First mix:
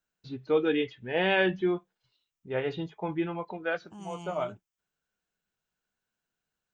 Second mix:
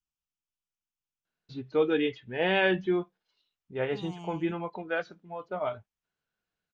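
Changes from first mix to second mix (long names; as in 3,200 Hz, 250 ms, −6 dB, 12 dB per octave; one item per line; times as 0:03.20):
first voice: entry +1.25 s
second voice: add high-frequency loss of the air 90 metres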